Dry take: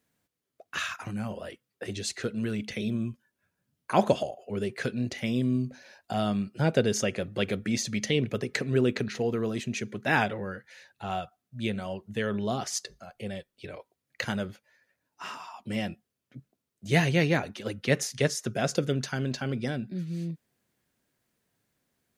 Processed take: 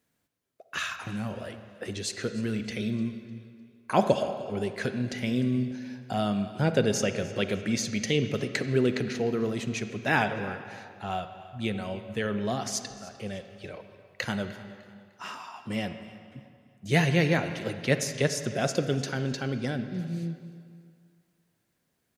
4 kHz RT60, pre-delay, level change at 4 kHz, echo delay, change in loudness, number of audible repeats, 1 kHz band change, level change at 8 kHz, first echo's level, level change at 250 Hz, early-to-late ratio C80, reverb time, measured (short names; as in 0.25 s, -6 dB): 1.8 s, 37 ms, +0.5 dB, 0.302 s, +0.5 dB, 2, +0.5 dB, 0.0 dB, -20.0 dB, +0.5 dB, 10.0 dB, 2.2 s